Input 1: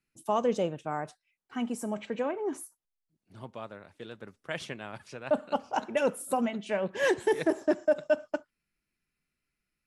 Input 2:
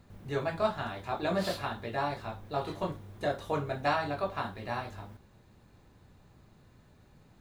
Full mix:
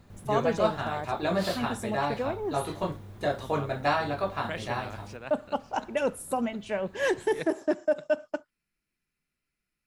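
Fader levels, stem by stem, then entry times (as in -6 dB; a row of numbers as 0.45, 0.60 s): -0.5, +3.0 dB; 0.00, 0.00 s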